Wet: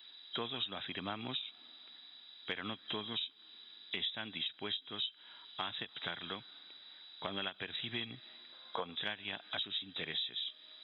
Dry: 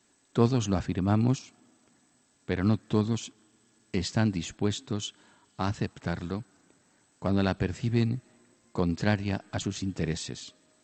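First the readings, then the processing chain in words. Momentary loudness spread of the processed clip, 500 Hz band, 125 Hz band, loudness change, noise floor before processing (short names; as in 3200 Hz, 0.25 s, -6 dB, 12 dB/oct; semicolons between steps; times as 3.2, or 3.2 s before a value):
15 LU, -14.5 dB, -25.5 dB, -10.0 dB, -67 dBFS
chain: nonlinear frequency compression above 3100 Hz 4:1; differentiator; spectral gain 8.53–8.96, 440–1700 Hz +8 dB; compressor 5:1, threshold -55 dBFS, peak gain reduction 17.5 dB; ending taper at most 370 dB/s; gain +18 dB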